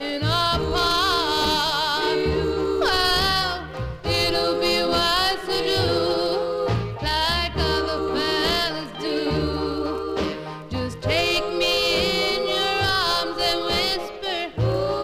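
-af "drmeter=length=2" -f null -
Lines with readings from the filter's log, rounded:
Channel 1: DR: 10.3
Overall DR: 10.3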